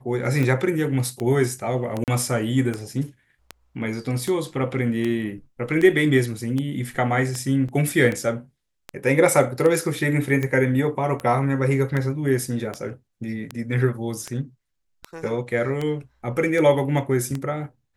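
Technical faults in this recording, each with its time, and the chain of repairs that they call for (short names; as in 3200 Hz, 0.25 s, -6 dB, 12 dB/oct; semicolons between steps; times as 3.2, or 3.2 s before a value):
tick 78 rpm -14 dBFS
2.04–2.08 gap 38 ms
7.68–7.69 gap 6 ms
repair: de-click; interpolate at 2.04, 38 ms; interpolate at 7.68, 6 ms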